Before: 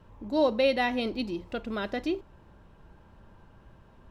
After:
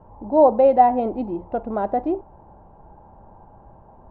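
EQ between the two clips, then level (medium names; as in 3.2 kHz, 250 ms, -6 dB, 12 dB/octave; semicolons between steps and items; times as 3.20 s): resonant low-pass 800 Hz, resonance Q 4.9; +4.5 dB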